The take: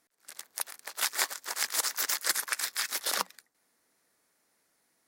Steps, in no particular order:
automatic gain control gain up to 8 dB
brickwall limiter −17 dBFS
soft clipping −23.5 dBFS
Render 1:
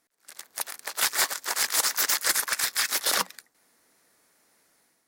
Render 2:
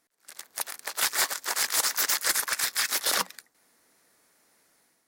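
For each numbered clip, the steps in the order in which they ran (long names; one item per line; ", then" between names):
soft clipping, then brickwall limiter, then automatic gain control
soft clipping, then automatic gain control, then brickwall limiter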